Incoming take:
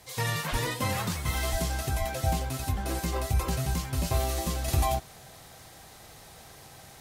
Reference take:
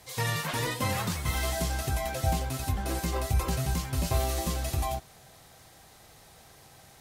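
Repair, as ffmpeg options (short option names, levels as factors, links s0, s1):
-filter_complex "[0:a]adeclick=t=4,asplit=3[s0][s1][s2];[s0]afade=t=out:st=0.51:d=0.02[s3];[s1]highpass=f=140:w=0.5412,highpass=f=140:w=1.3066,afade=t=in:st=0.51:d=0.02,afade=t=out:st=0.63:d=0.02[s4];[s2]afade=t=in:st=0.63:d=0.02[s5];[s3][s4][s5]amix=inputs=3:normalize=0,asplit=3[s6][s7][s8];[s6]afade=t=out:st=1.51:d=0.02[s9];[s7]highpass=f=140:w=0.5412,highpass=f=140:w=1.3066,afade=t=in:st=1.51:d=0.02,afade=t=out:st=1.63:d=0.02[s10];[s8]afade=t=in:st=1.63:d=0.02[s11];[s9][s10][s11]amix=inputs=3:normalize=0,asplit=3[s12][s13][s14];[s12]afade=t=out:st=1.98:d=0.02[s15];[s13]highpass=f=140:w=0.5412,highpass=f=140:w=1.3066,afade=t=in:st=1.98:d=0.02,afade=t=out:st=2.1:d=0.02[s16];[s14]afade=t=in:st=2.1:d=0.02[s17];[s15][s16][s17]amix=inputs=3:normalize=0,asetnsamples=n=441:p=0,asendcmd='4.68 volume volume -4.5dB',volume=1"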